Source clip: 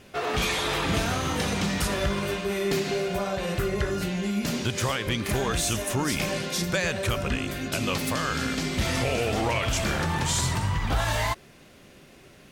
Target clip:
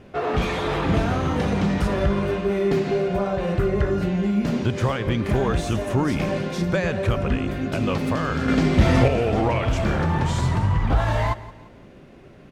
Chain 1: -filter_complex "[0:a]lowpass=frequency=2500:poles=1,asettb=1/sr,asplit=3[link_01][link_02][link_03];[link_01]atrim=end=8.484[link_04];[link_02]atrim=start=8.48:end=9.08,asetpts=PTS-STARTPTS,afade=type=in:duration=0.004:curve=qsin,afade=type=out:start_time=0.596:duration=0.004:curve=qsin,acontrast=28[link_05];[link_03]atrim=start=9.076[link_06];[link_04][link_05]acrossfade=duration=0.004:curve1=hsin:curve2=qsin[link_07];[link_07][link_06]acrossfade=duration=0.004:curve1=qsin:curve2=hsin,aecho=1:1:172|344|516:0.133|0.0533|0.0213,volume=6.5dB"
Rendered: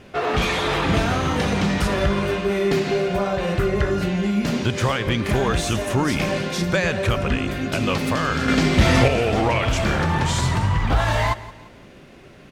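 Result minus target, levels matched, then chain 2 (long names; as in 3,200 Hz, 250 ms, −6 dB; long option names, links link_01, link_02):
2,000 Hz band +4.0 dB
-filter_complex "[0:a]lowpass=frequency=860:poles=1,asettb=1/sr,asplit=3[link_01][link_02][link_03];[link_01]atrim=end=8.484[link_04];[link_02]atrim=start=8.48:end=9.08,asetpts=PTS-STARTPTS,afade=type=in:duration=0.004:curve=qsin,afade=type=out:start_time=0.596:duration=0.004:curve=qsin,acontrast=28[link_05];[link_03]atrim=start=9.076[link_06];[link_04][link_05]acrossfade=duration=0.004:curve1=hsin:curve2=qsin[link_07];[link_07][link_06]acrossfade=duration=0.004:curve1=qsin:curve2=hsin,aecho=1:1:172|344|516:0.133|0.0533|0.0213,volume=6.5dB"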